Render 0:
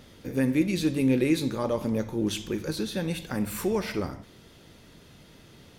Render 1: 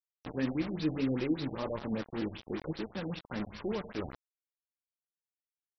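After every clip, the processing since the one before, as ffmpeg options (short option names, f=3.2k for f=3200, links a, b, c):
-af "flanger=delay=0.9:depth=5.9:regen=52:speed=1.7:shape=sinusoidal,acrusher=bits=5:mix=0:aa=0.000001,afftfilt=real='re*lt(b*sr/1024,780*pow(6000/780,0.5+0.5*sin(2*PI*5.1*pts/sr)))':imag='im*lt(b*sr/1024,780*pow(6000/780,0.5+0.5*sin(2*PI*5.1*pts/sr)))':win_size=1024:overlap=0.75,volume=-3.5dB"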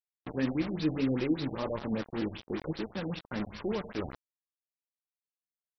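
-af "agate=range=-45dB:threshold=-47dB:ratio=16:detection=peak,volume=2dB"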